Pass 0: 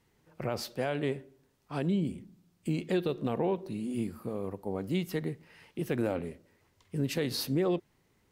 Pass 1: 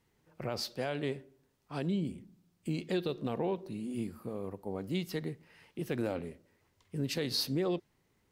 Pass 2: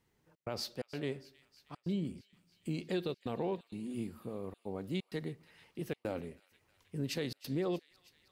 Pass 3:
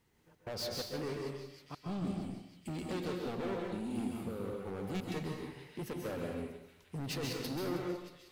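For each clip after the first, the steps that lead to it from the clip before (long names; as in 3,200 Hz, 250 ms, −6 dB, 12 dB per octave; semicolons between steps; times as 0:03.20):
dynamic equaliser 4,600 Hz, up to +7 dB, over −56 dBFS, Q 1.5; level −3.5 dB
gate pattern "xxx.xxx.xxxx" 129 BPM −60 dB; delay with a high-pass on its return 317 ms, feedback 71%, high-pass 1,900 Hz, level −18 dB; level −2.5 dB
hard clipping −39 dBFS, distortion −6 dB; dense smooth reverb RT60 0.83 s, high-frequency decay 0.85×, pre-delay 120 ms, DRR 0 dB; level +2.5 dB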